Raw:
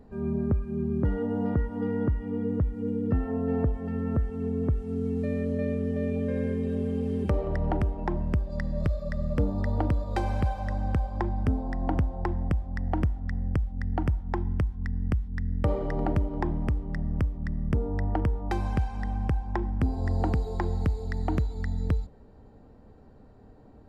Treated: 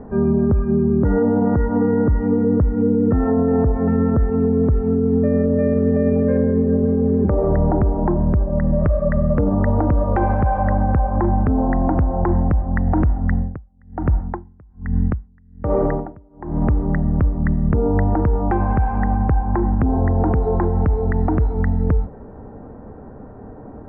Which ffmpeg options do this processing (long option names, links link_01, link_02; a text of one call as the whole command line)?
ffmpeg -i in.wav -filter_complex "[0:a]asplit=3[link_01][link_02][link_03];[link_01]afade=type=out:start_time=4.98:duration=0.02[link_04];[link_02]lowpass=1900,afade=type=in:start_time=4.98:duration=0.02,afade=type=out:start_time=5.56:duration=0.02[link_05];[link_03]afade=type=in:start_time=5.56:duration=0.02[link_06];[link_04][link_05][link_06]amix=inputs=3:normalize=0,asettb=1/sr,asplit=3[link_07][link_08][link_09];[link_07]atrim=end=6.374[link_10];[link_08]atrim=start=6.37:end=8.79,asetpts=PTS-STARTPTS,afade=type=in:duration=0.004:curve=qsin,afade=type=out:start_time=2.416:duration=0.004:curve=qsin,lowpass=frequency=1000:poles=1[link_11];[link_09]atrim=start=8.786[link_12];[link_10][link_11]acrossfade=duration=0.004:curve1=hsin:curve2=qsin[link_13];[link_13][link_12]acrossfade=duration=0.004:curve1=qsin:curve2=hsin,asplit=3[link_14][link_15][link_16];[link_14]afade=type=out:start_time=13.28:duration=0.02[link_17];[link_15]aeval=exprs='val(0)*pow(10,-35*(0.5-0.5*cos(2*PI*1.2*n/s))/20)':channel_layout=same,afade=type=in:start_time=13.28:duration=0.02,afade=type=out:start_time=16.72:duration=0.02[link_18];[link_16]afade=type=in:start_time=16.72:duration=0.02[link_19];[link_17][link_18][link_19]amix=inputs=3:normalize=0,lowpass=frequency=1600:width=0.5412,lowpass=frequency=1600:width=1.3066,lowshelf=frequency=89:gain=-7.5,alimiter=level_in=26dB:limit=-1dB:release=50:level=0:latency=1,volume=-8.5dB" out.wav